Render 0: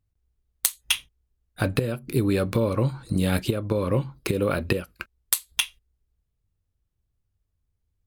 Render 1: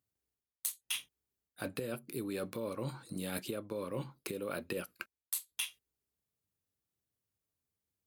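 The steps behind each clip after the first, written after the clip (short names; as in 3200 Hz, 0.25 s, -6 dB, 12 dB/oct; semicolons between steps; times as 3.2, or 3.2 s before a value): HPF 200 Hz 12 dB/oct; high shelf 6900 Hz +8.5 dB; reverse; compressor 6:1, threshold -31 dBFS, peak gain reduction 20 dB; reverse; gain -4.5 dB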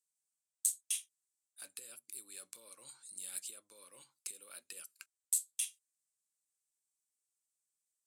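band-pass 8000 Hz, Q 3.5; gain +11 dB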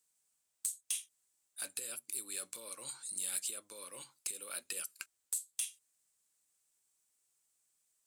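compressor 6:1, threshold -41 dBFS, peak gain reduction 13.5 dB; soft clip -34.5 dBFS, distortion -12 dB; gain +9.5 dB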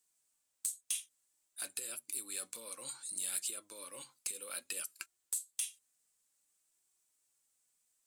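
flange 0.58 Hz, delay 2.7 ms, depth 1.5 ms, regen +67%; gain +4.5 dB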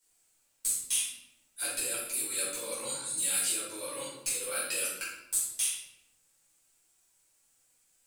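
shoebox room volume 280 m³, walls mixed, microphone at 4.8 m; gain -1.5 dB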